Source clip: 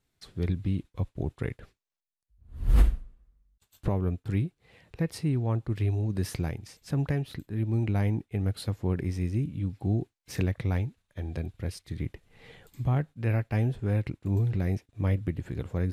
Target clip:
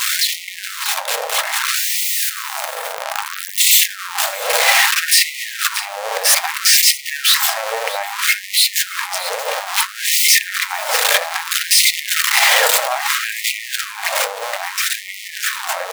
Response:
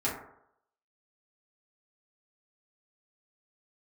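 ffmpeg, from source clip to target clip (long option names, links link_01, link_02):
-filter_complex "[0:a]aeval=exprs='val(0)+0.5*0.0562*sgn(val(0))':channel_layout=same,highpass=59,acompressor=threshold=-26dB:ratio=2,aeval=exprs='0.2*(cos(1*acos(clip(val(0)/0.2,-1,1)))-cos(1*PI/2))+0.0631*(cos(2*acos(clip(val(0)/0.2,-1,1)))-cos(2*PI/2))':channel_layout=same,dynaudnorm=framelen=460:gausssize=11:maxgain=7dB,aecho=1:1:628:0.237,asplit=2[link_01][link_02];[1:a]atrim=start_sample=2205[link_03];[link_02][link_03]afir=irnorm=-1:irlink=0,volume=-11dB[link_04];[link_01][link_04]amix=inputs=2:normalize=0,alimiter=level_in=15dB:limit=-1dB:release=50:level=0:latency=1,afftfilt=real='re*gte(b*sr/1024,440*pow(1900/440,0.5+0.5*sin(2*PI*0.61*pts/sr)))':imag='im*gte(b*sr/1024,440*pow(1900/440,0.5+0.5*sin(2*PI*0.61*pts/sr)))':win_size=1024:overlap=0.75,volume=-1dB"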